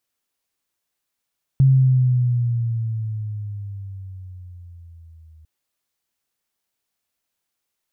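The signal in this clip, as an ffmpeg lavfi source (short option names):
-f lavfi -i "aevalsrc='pow(10,(-9.5-35*t/3.85)/20)*sin(2*PI*135*3.85/(-9.5*log(2)/12)*(exp(-9.5*log(2)/12*t/3.85)-1))':d=3.85:s=44100"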